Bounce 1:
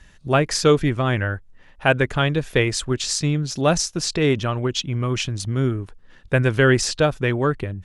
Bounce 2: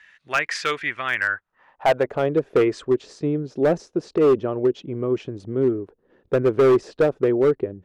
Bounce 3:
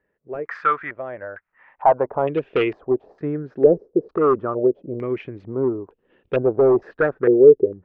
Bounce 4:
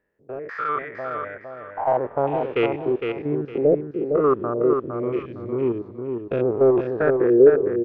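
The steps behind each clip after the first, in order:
time-frequency box 2.61–2.87 s, 980–9300 Hz +7 dB; band-pass sweep 2 kHz -> 410 Hz, 1.13–2.34 s; hard clipper -19.5 dBFS, distortion -12 dB; trim +7.5 dB
step-sequenced low-pass 2.2 Hz 450–2800 Hz; trim -2.5 dB
spectrogram pixelated in time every 100 ms; feedback delay 459 ms, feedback 25%, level -5.5 dB

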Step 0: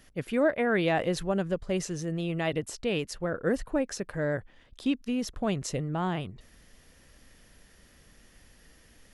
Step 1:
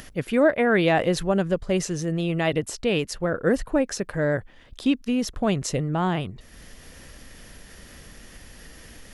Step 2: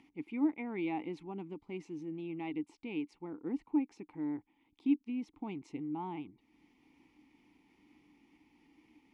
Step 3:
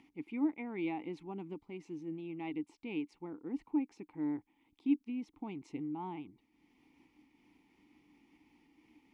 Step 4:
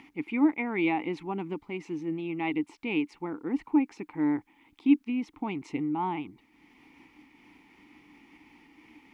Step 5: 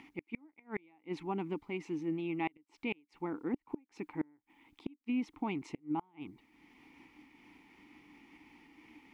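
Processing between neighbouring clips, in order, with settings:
upward compressor, threshold -42 dBFS; trim +6 dB
vowel filter u; trim -4 dB
random flutter of the level, depth 55%; trim +1.5 dB
peaking EQ 1.6 kHz +8 dB 1.8 oct; trim +8.5 dB
inverted gate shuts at -21 dBFS, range -34 dB; trim -3 dB

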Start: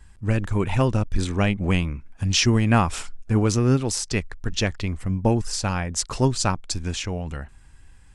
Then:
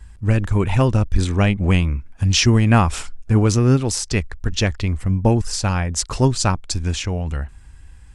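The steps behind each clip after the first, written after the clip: peaking EQ 60 Hz +8.5 dB 1.2 oct; trim +3 dB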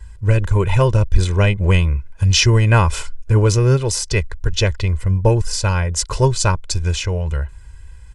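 comb 2 ms, depth 77%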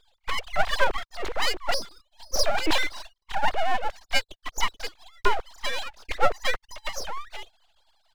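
formants replaced by sine waves; full-wave rectifier; trim -8.5 dB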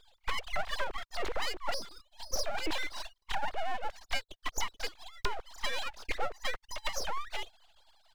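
compression 10:1, threshold -29 dBFS, peak gain reduction 17 dB; trim +1.5 dB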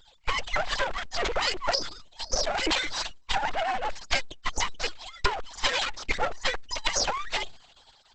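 trim +8 dB; Opus 10 kbps 48 kHz

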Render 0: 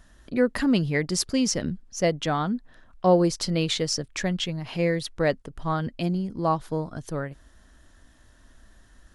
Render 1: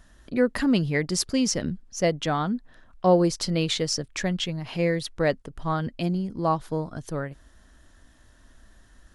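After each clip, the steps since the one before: no audible change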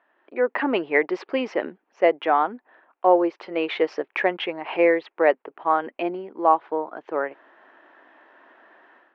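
elliptic band-pass 350–2500 Hz, stop band 60 dB; peaking EQ 850 Hz +6 dB 0.64 oct; level rider gain up to 14 dB; trim -4 dB

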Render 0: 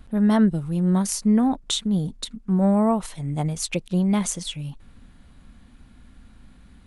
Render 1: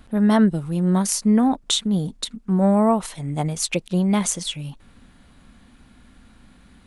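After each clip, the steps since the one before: bass shelf 140 Hz -8.5 dB; trim +4 dB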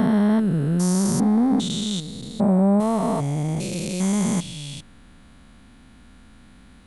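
spectrogram pixelated in time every 400 ms; trim +3 dB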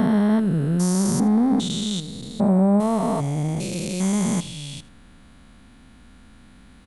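delay 80 ms -20 dB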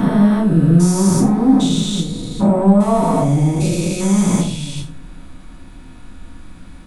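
in parallel at -7.5 dB: saturation -25.5 dBFS, distortion -7 dB; on the sum: reverberation RT60 0.45 s, pre-delay 3 ms, DRR -6 dB; trim -4 dB

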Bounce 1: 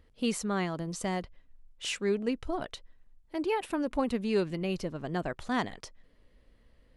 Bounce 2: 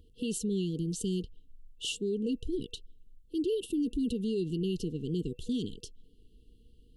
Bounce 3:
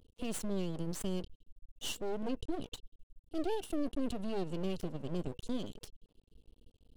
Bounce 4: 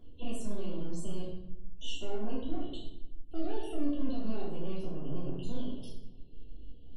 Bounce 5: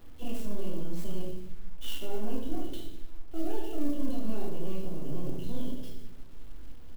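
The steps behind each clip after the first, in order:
FFT band-reject 490–2700 Hz; peaking EQ 5.3 kHz -5.5 dB 0.78 oct; peak limiter -28 dBFS, peak gain reduction 10 dB; trim +3.5 dB
half-wave rectifier
compression 2:1, threshold -52 dBFS, peak gain reduction 12.5 dB; loudest bins only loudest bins 64; simulated room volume 250 m³, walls mixed, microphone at 3.1 m
bit crusher 10-bit; feedback delay 74 ms, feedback 57%, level -12 dB; sampling jitter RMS 0.03 ms; trim +1 dB

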